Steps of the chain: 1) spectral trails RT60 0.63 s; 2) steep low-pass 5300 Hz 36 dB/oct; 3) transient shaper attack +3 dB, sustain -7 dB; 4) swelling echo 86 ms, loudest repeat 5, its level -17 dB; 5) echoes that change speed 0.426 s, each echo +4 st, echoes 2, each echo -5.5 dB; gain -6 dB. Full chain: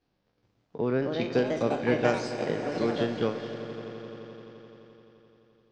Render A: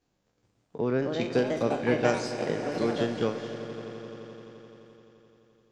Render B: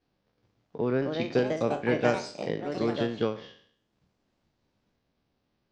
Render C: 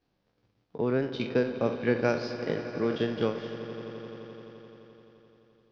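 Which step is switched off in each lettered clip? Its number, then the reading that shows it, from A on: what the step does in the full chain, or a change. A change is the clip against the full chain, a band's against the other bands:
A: 2, 8 kHz band +4.0 dB; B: 4, momentary loudness spread change -11 LU; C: 5, 1 kHz band -3.0 dB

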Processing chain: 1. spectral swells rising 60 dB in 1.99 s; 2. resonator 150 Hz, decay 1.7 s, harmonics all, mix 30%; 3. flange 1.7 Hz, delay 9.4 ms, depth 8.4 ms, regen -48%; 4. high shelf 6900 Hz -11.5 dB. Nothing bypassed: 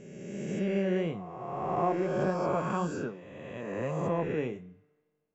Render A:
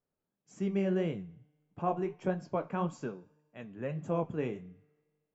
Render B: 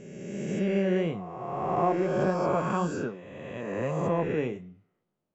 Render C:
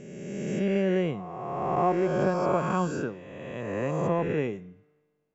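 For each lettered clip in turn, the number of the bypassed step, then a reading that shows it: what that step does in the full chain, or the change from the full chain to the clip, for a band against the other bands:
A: 1, momentary loudness spread change +7 LU; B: 2, loudness change +3.0 LU; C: 3, loudness change +4.0 LU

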